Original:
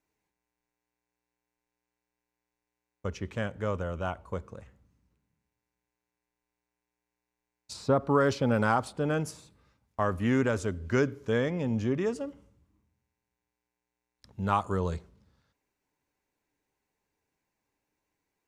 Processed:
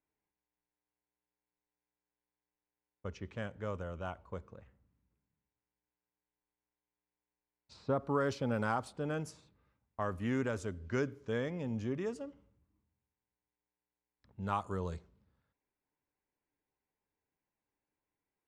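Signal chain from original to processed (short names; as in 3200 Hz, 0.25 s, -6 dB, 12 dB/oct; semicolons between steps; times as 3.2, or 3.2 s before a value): low-pass opened by the level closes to 2400 Hz, open at -25.5 dBFS; gain -8 dB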